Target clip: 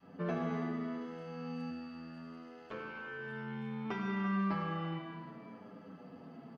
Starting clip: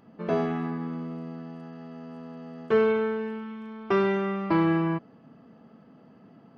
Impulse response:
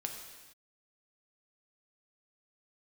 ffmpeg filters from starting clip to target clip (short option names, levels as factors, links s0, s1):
-filter_complex "[0:a]acompressor=threshold=0.0224:ratio=6,adynamicequalizer=threshold=0.00355:dfrequency=430:dqfactor=0.71:tfrequency=430:tqfactor=0.71:attack=5:release=100:ratio=0.375:range=3.5:mode=cutabove:tftype=bell,asettb=1/sr,asplit=3[s0][s1][s2];[s0]atrim=end=1.704[s3];[s1]atrim=start=1.7:end=3.85,asetpts=PTS-STARTPTS,afade=t=in:d=0.004:c=qsin,afade=t=out:st=2.146:d=0.004:c=qsin,tremolo=f=83:d=0.889[s4];[s2]atrim=start=3.846[s5];[s3][s4]acrossfade=d=0.004:c1=hsin:c2=qsin[s6];[s6][s5]acrossfade=d=0.004:c1=qsin:c2=hsin,lowshelf=f=130:g=-5,aecho=1:1:337:0.2[s7];[1:a]atrim=start_sample=2205,asetrate=28224,aresample=44100[s8];[s7][s8]afir=irnorm=-1:irlink=0,asplit=2[s9][s10];[s10]adelay=7.9,afreqshift=-0.67[s11];[s9][s11]amix=inputs=2:normalize=1,volume=1.33"